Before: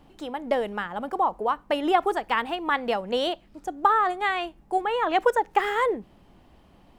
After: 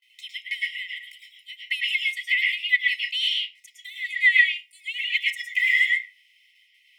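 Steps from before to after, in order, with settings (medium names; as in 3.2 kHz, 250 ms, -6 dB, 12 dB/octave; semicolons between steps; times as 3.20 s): gate with hold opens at -46 dBFS; brick-wall FIR high-pass 1.9 kHz; reverberation RT60 0.35 s, pre-delay 105 ms, DRR -2.5 dB; trim +2.5 dB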